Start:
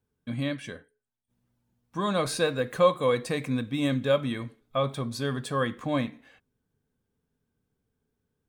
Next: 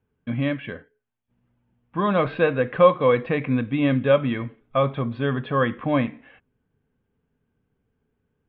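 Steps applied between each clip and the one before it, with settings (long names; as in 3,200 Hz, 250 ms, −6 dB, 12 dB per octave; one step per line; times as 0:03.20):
Butterworth low-pass 3,100 Hz 48 dB per octave
level +6 dB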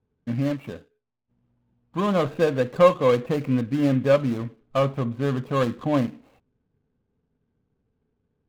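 running median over 25 samples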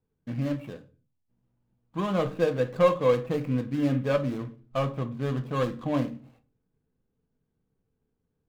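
rectangular room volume 160 cubic metres, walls furnished, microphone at 0.64 metres
level −5.5 dB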